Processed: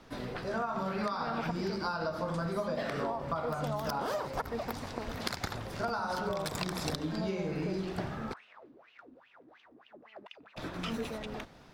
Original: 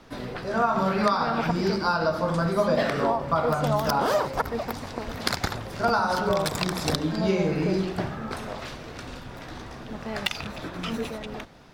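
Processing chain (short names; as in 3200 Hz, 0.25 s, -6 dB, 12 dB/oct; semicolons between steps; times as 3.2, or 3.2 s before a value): compressor, threshold -26 dBFS, peak gain reduction 8.5 dB; 8.32–10.56 wah 1.8 Hz -> 5.7 Hz 270–2900 Hz, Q 8.3; gain -4.5 dB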